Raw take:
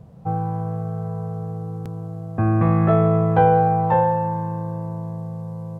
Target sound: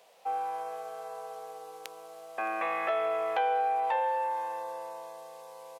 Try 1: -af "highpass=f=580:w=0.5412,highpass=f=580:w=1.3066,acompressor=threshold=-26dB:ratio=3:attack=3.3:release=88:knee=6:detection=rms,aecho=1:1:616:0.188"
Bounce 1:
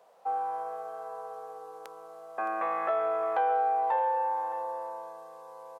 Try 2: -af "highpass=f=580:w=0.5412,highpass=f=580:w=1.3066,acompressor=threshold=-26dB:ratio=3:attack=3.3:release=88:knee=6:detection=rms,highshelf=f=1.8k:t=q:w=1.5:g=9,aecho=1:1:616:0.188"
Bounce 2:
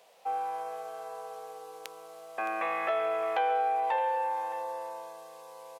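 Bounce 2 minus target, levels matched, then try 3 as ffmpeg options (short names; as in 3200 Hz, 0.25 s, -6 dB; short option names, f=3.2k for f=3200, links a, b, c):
echo-to-direct +10 dB
-af "highpass=f=580:w=0.5412,highpass=f=580:w=1.3066,acompressor=threshold=-26dB:ratio=3:attack=3.3:release=88:knee=6:detection=rms,highshelf=f=1.8k:t=q:w=1.5:g=9,aecho=1:1:616:0.0596"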